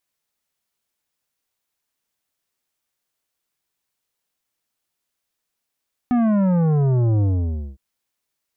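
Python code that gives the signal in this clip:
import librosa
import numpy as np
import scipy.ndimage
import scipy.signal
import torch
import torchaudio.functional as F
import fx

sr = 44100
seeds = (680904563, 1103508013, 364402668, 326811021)

y = fx.sub_drop(sr, level_db=-16.0, start_hz=250.0, length_s=1.66, drive_db=11, fade_s=0.55, end_hz=65.0)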